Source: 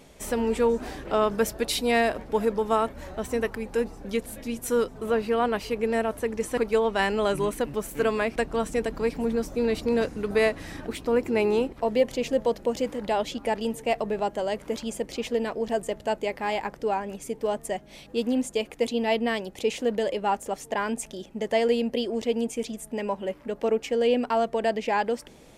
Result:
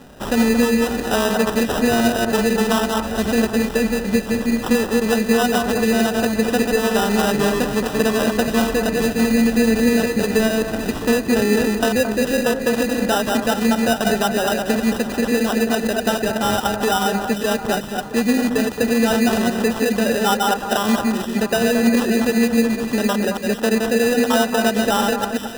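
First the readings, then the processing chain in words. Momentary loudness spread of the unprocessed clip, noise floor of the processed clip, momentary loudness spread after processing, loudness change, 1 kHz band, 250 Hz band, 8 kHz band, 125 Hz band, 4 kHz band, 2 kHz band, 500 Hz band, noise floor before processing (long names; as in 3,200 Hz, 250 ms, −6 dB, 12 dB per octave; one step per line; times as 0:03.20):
7 LU, −28 dBFS, 4 LU, +8.5 dB, +7.0 dB, +12.5 dB, +12.5 dB, +12.0 dB, +11.0 dB, +10.5 dB, +5.5 dB, −50 dBFS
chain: delay that plays each chunk backwards 125 ms, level −4 dB
downward compressor 3 to 1, threshold −25 dBFS, peak gain reduction 9 dB
hollow resonant body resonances 220/740 Hz, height 8 dB
decimation without filtering 20×
delay that swaps between a low-pass and a high-pass 222 ms, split 1,700 Hz, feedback 69%, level −7.5 dB
level +7 dB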